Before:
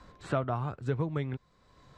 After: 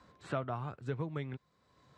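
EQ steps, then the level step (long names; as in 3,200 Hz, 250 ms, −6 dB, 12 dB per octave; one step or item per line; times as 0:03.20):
high-pass filter 86 Hz
dynamic equaliser 2,600 Hz, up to +3 dB, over −51 dBFS, Q 0.71
−6.0 dB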